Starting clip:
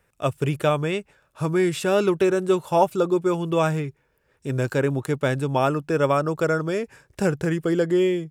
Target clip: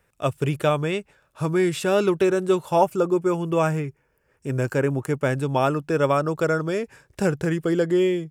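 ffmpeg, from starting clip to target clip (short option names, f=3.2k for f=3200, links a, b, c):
-filter_complex "[0:a]asettb=1/sr,asplit=3[a][b][c];[a]atrim=end=2.814[d];[b]atrim=start=2.81:end=5.39,asetpts=PTS-STARTPTS,afade=t=in:d=0.004:c=qsin,afade=t=out:st=2.576:d=0.004:c=qsin,equalizer=f=3.8k:w=4.5:g=-12.5[e];[c]atrim=start=5.386[f];[d][e]acrossfade=d=0.004:c1=hsin:c2=qsin[g];[g][f]acrossfade=d=0.004:c1=qsin:c2=hsin"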